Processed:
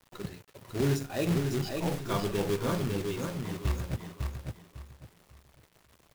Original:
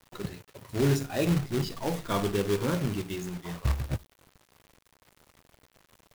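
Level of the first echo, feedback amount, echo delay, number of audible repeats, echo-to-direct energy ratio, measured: -4.5 dB, 27%, 0.552 s, 3, -4.0 dB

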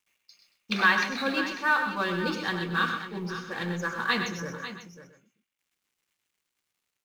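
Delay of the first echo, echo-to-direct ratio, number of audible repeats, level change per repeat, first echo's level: 98 ms, -5.0 dB, 5, no steady repeat, -11.0 dB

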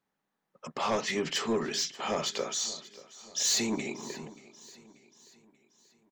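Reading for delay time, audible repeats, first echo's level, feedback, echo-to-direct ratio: 0.584 s, 3, -19.0 dB, 48%, -18.0 dB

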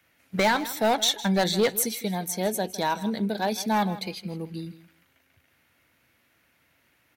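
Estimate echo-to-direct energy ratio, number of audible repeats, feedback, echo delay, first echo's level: -16.0 dB, 2, 17%, 0.159 s, -16.0 dB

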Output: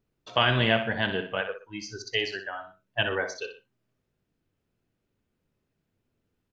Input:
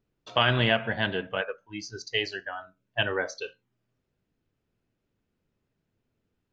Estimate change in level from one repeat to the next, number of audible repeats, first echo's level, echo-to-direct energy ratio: -8.5 dB, 2, -9.5 dB, -9.0 dB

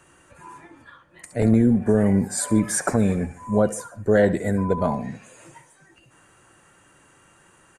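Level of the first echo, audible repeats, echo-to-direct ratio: -18.0 dB, 2, -17.0 dB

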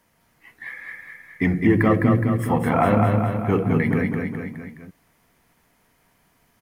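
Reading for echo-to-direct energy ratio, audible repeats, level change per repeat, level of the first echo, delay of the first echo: -2.5 dB, 4, -4.5 dB, -4.0 dB, 0.209 s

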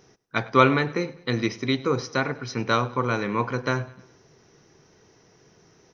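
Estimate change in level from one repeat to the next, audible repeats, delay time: -6.0 dB, 3, 0.101 s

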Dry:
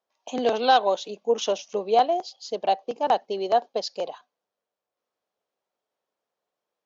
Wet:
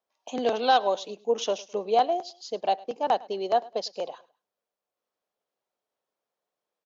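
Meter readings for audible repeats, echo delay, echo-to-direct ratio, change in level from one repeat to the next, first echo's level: 2, 0.104 s, -21.5 dB, -10.0 dB, -22.0 dB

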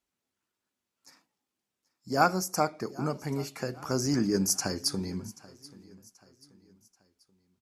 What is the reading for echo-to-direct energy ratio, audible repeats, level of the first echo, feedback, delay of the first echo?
-20.0 dB, 2, -21.0 dB, 42%, 0.783 s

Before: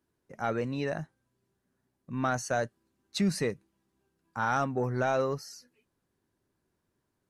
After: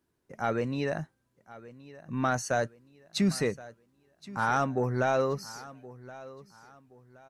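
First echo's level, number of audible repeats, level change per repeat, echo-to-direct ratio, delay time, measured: -18.5 dB, 2, -9.5 dB, -18.0 dB, 1.072 s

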